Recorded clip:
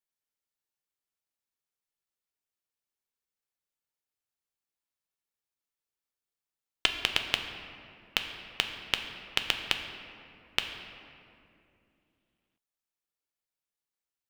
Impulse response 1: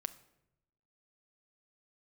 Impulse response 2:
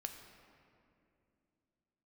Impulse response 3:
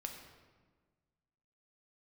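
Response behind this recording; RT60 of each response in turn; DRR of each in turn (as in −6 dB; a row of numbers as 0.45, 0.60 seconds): 2; 0.85, 2.6, 1.5 seconds; 10.0, 4.5, 2.5 decibels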